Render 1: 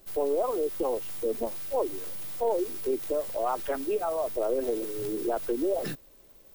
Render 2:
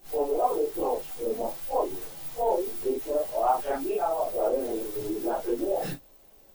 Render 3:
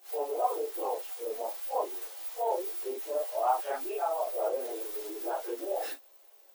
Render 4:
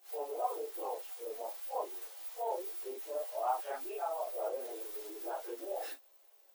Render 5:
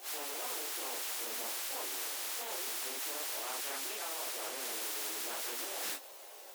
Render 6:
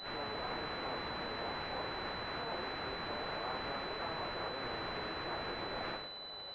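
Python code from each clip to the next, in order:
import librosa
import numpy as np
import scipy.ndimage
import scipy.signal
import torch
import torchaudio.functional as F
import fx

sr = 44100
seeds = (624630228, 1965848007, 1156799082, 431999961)

y1 = fx.phase_scramble(x, sr, seeds[0], window_ms=100)
y1 = fx.peak_eq(y1, sr, hz=790.0, db=8.0, octaves=0.35)
y2 = scipy.signal.sosfilt(scipy.signal.bessel(6, 590.0, 'highpass', norm='mag', fs=sr, output='sos'), y1)
y2 = F.gain(torch.from_numpy(y2), -1.5).numpy()
y3 = fx.low_shelf(y2, sr, hz=230.0, db=-6.5)
y3 = F.gain(torch.from_numpy(y3), -5.5).numpy()
y4 = fx.spectral_comp(y3, sr, ratio=4.0)
y4 = F.gain(torch.from_numpy(y4), -3.5).numpy()
y5 = fx.rev_gated(y4, sr, seeds[1], gate_ms=150, shape='rising', drr_db=9.5)
y5 = fx.pwm(y5, sr, carrier_hz=4000.0)
y5 = F.gain(torch.from_numpy(y5), 2.0).numpy()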